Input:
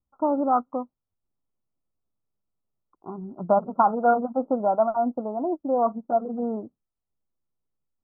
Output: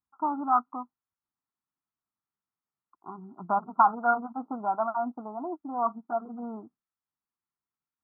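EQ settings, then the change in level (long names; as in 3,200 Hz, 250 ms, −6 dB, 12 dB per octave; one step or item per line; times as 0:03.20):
high-pass filter 1,000 Hz 6 dB per octave
high-frequency loss of the air 390 metres
phaser with its sweep stopped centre 1,300 Hz, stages 4
+7.5 dB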